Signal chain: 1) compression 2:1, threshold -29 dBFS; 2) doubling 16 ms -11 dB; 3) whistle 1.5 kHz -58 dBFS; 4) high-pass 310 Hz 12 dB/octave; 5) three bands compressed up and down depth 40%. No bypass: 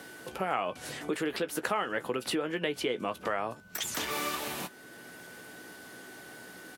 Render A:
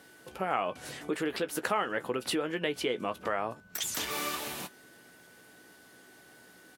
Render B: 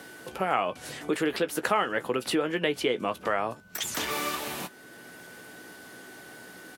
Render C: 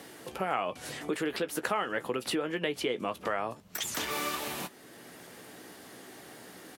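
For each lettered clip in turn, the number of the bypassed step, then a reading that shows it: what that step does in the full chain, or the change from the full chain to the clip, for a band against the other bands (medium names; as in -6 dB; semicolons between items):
5, crest factor change +1.5 dB; 1, momentary loudness spread change +3 LU; 3, momentary loudness spread change +1 LU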